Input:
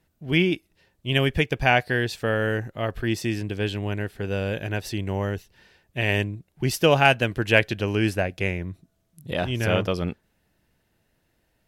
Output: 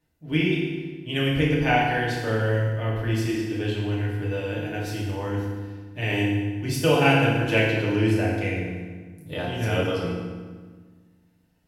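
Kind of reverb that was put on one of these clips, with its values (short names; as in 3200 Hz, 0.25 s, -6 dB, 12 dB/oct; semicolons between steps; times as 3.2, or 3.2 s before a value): FDN reverb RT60 1.5 s, low-frequency decay 1.4×, high-frequency decay 0.75×, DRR -6 dB; gain -8.5 dB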